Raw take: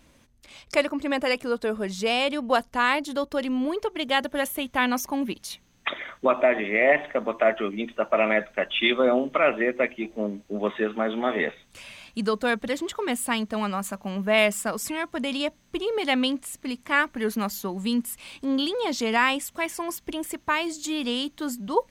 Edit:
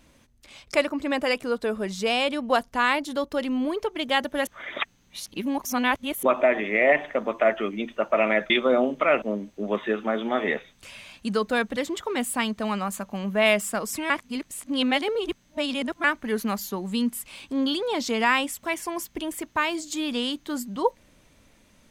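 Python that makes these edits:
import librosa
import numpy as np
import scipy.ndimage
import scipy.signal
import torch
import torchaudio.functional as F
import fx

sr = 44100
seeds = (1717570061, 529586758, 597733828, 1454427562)

y = fx.edit(x, sr, fx.reverse_span(start_s=4.47, length_s=1.76),
    fx.cut(start_s=8.5, length_s=0.34),
    fx.cut(start_s=9.56, length_s=0.58),
    fx.reverse_span(start_s=15.02, length_s=1.94), tone=tone)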